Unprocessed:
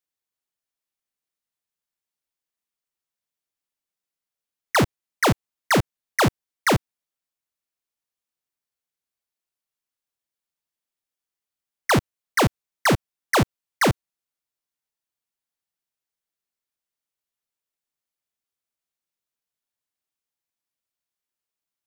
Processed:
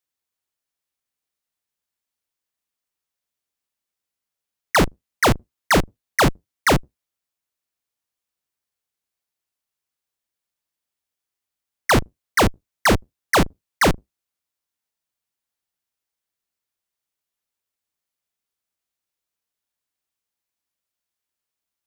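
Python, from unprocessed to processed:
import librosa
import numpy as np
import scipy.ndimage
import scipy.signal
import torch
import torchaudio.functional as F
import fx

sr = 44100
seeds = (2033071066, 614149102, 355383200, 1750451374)

y = fx.octave_divider(x, sr, octaves=2, level_db=4.0)
y = fx.low_shelf(y, sr, hz=120.0, db=-9.0)
y = y * 10.0 ** (3.0 / 20.0)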